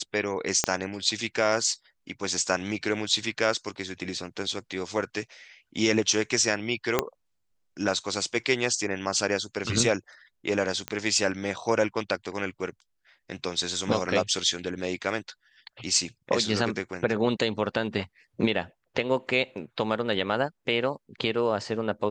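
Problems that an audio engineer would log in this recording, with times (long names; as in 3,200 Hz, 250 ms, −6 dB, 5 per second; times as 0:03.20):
0:00.64: click −7 dBFS
0:06.99: click −6 dBFS
0:10.88: click −15 dBFS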